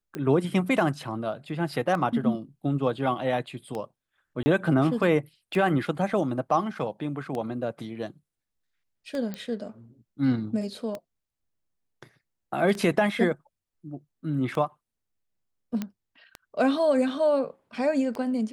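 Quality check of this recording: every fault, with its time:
tick 33 1/3 rpm -20 dBFS
4.43–4.46 gap 30 ms
9.34 pop -20 dBFS
15.82 pop -17 dBFS

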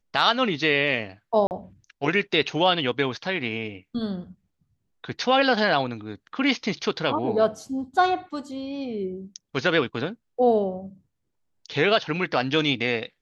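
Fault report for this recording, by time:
1.47–1.51 gap 39 ms

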